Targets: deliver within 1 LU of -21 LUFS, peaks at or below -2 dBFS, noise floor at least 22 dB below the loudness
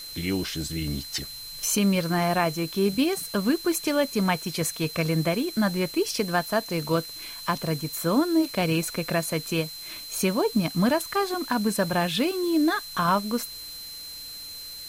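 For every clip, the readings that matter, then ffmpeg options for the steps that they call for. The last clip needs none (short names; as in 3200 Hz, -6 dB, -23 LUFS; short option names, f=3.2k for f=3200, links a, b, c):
steady tone 4100 Hz; tone level -38 dBFS; noise floor -39 dBFS; noise floor target -48 dBFS; loudness -26.0 LUFS; peak -10.5 dBFS; loudness target -21.0 LUFS
-> -af "bandreject=f=4.1k:w=30"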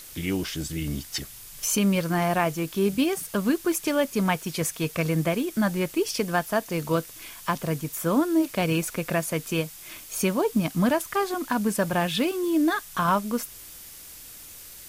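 steady tone none; noise floor -44 dBFS; noise floor target -48 dBFS
-> -af "afftdn=nr=6:nf=-44"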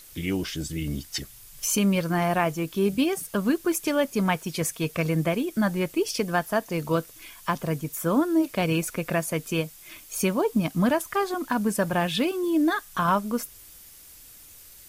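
noise floor -49 dBFS; loudness -26.0 LUFS; peak -10.5 dBFS; loudness target -21.0 LUFS
-> -af "volume=5dB"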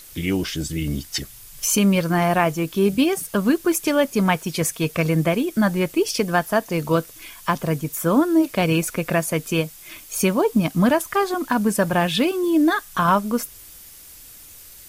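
loudness -21.0 LUFS; peak -5.5 dBFS; noise floor -44 dBFS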